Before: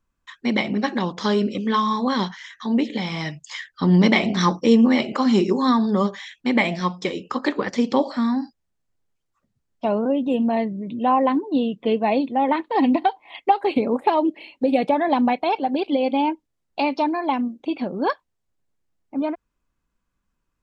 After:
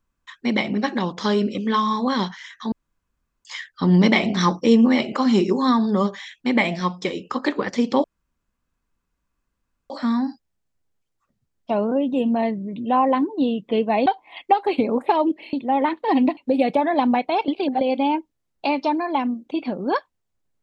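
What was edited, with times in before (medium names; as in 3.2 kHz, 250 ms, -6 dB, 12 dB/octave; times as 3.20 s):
2.72–3.45 s: room tone
8.04 s: insert room tone 1.86 s
12.20–13.04 s: move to 14.51 s
15.62–15.95 s: reverse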